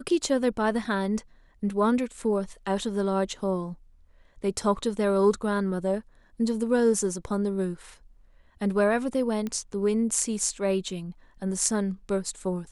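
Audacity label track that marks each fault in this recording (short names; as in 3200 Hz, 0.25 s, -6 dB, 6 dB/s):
9.470000	9.470000	pop -19 dBFS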